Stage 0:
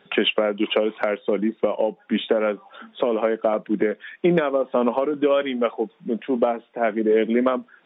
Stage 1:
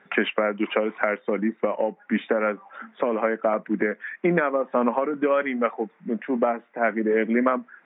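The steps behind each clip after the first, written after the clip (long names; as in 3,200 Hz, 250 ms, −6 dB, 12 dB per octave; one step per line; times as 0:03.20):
drawn EQ curve 120 Hz 0 dB, 230 Hz +6 dB, 410 Hz +2 dB, 2,000 Hz +12 dB, 3,200 Hz −7 dB
level −6.5 dB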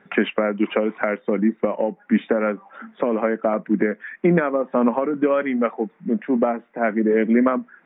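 low-shelf EQ 340 Hz +10.5 dB
level −1 dB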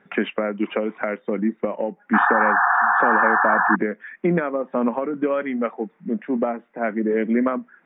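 sound drawn into the spectrogram noise, 0:02.13–0:03.76, 700–1,800 Hz −15 dBFS
level −3 dB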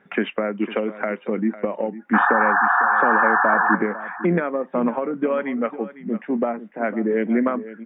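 single-tap delay 502 ms −15 dB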